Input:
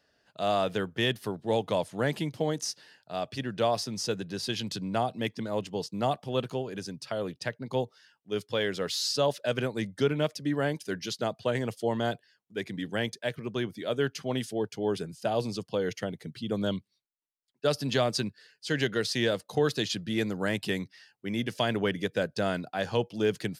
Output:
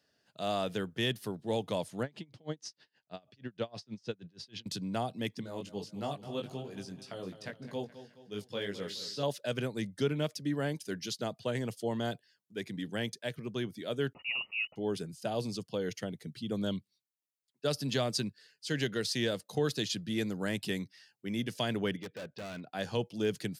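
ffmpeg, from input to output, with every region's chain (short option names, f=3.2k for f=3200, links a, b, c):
-filter_complex "[0:a]asettb=1/sr,asplit=3[a][b][c];[a]atrim=end=2.034[d];[b]atrim=start=2.03:end=4.66,asetpts=PTS-STARTPTS,afade=t=in:d=0.004:c=qsin,afade=t=out:st=2.626:d=0.004:c=qsin,lowpass=4.3k,aeval=exprs='val(0)*pow(10,-31*(0.5-0.5*cos(2*PI*6.3*n/s))/20)':c=same[e];[c]atrim=start=4.656[f];[d][e]acrossfade=d=0.004:c1=hsin:c2=qsin[g];[g][f]acrossfade=d=0.004:c1=qsin:c2=hsin,asettb=1/sr,asplit=3[h][i][j];[h]atrim=end=5.414[k];[i]atrim=start=5.41:end=9.23,asetpts=PTS-STARTPTS,afade=t=in:d=0.004:c=qsin,afade=t=out:st=3.816:d=0.004:c=qsin,acrossover=split=4200[l][m];[m]acompressor=threshold=-44dB:ratio=4:attack=1:release=60[n];[l][n]amix=inputs=2:normalize=0,flanger=delay=19.5:depth=2.4:speed=3,aecho=1:1:211|422|633|844:0.224|0.101|0.0453|0.0204,atrim=end_sample=168462[o];[j]atrim=start=9.226[p];[k][o]acrossfade=d=0.004:c1=hsin:c2=qsin[q];[q][p]acrossfade=d=0.004:c1=qsin:c2=hsin,asettb=1/sr,asplit=3[r][s][t];[r]atrim=end=14.134[u];[s]atrim=start=14.13:end=14.76,asetpts=PTS-STARTPTS,afade=t=in:d=0.004:c=qsin,afade=t=out:st=0.626:d=0.004:c=qsin,aeval=exprs='val(0)*gte(abs(val(0)),0.00473)':c=same,asuperstop=centerf=1400:order=4:qfactor=2.6,lowpass=f=2.6k:t=q:w=0.5098,lowpass=f=2.6k:t=q:w=0.6013,lowpass=f=2.6k:t=q:w=0.9,lowpass=f=2.6k:t=q:w=2.563,afreqshift=-3000[v];[t]atrim=start=14.756[w];[u][v]acrossfade=d=0.004:c1=hsin:c2=qsin[x];[x][w]acrossfade=d=0.004:c1=qsin:c2=hsin,asettb=1/sr,asplit=3[y][z][aa];[y]atrim=end=21.964[ab];[z]atrim=start=21.96:end=22.72,asetpts=PTS-STARTPTS,afade=t=in:d=0.004:c=qsin,afade=t=out:st=0.756:d=0.004:c=qsin,lowpass=f=3.4k:w=0.5412,lowpass=f=3.4k:w=1.3066,lowshelf=f=300:g=-7,asoftclip=type=hard:threshold=-33.5dB[ac];[aa]atrim=start=22.716[ad];[ab][ac]acrossfade=d=0.004:c1=hsin:c2=qsin[ae];[ae][ad]acrossfade=d=0.004:c1=qsin:c2=hsin,highpass=110,equalizer=f=980:w=0.31:g=-7"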